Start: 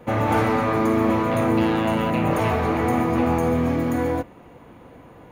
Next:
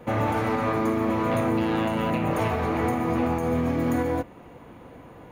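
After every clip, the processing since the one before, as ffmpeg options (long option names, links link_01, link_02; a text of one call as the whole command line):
ffmpeg -i in.wav -af "alimiter=limit=-15.5dB:level=0:latency=1:release=230" out.wav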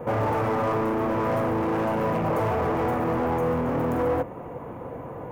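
ffmpeg -i in.wav -af "asoftclip=type=hard:threshold=-32dB,equalizer=frequency=125:width_type=o:width=1:gain=7,equalizer=frequency=500:width_type=o:width=1:gain=8,equalizer=frequency=1000:width_type=o:width=1:gain=6,equalizer=frequency=4000:width_type=o:width=1:gain=-11,equalizer=frequency=8000:width_type=o:width=1:gain=-5,volume=3dB" out.wav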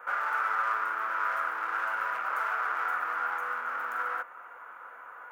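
ffmpeg -i in.wav -af "highpass=frequency=1400:width_type=q:width=8.2,volume=-6.5dB" out.wav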